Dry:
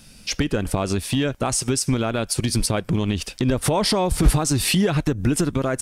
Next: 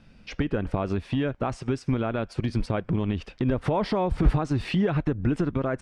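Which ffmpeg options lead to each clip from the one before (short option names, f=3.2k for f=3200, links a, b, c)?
-af "lowpass=2.1k,volume=-4dB"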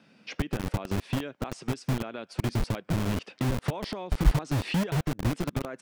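-filter_complex "[0:a]acrossover=split=170|2800[a][b][c];[a]acrusher=bits=4:mix=0:aa=0.000001[d];[b]acompressor=threshold=-34dB:ratio=6[e];[d][e][c]amix=inputs=3:normalize=0"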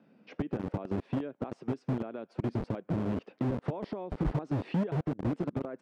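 -af "bandpass=f=350:t=q:w=0.65:csg=0"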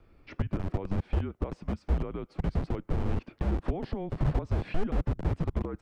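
-af "afreqshift=-190,volume=4dB"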